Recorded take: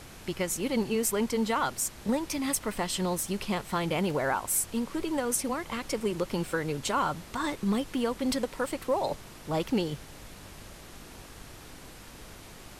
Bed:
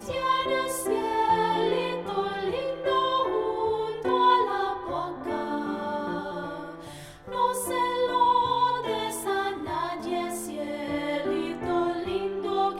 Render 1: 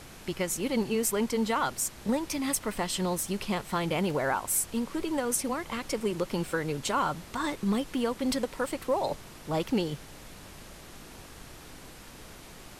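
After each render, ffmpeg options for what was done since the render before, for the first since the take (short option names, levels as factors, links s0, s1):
-af "bandreject=f=50:t=h:w=4,bandreject=f=100:t=h:w=4"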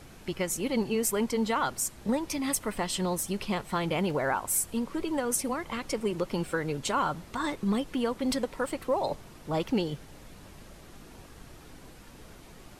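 -af "afftdn=nr=6:nf=-48"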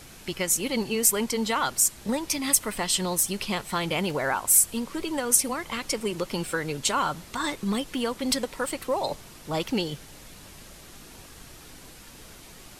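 -af "highshelf=f=2100:g=10"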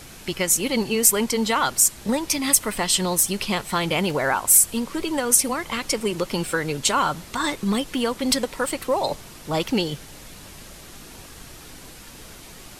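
-af "volume=1.68,alimiter=limit=0.794:level=0:latency=1"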